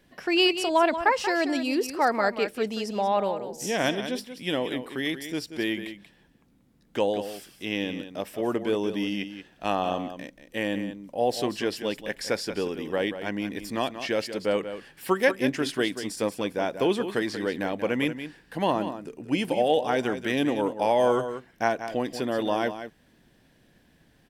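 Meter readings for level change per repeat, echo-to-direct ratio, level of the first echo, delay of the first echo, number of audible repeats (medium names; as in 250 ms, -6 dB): no regular repeats, -10.5 dB, -10.5 dB, 184 ms, 1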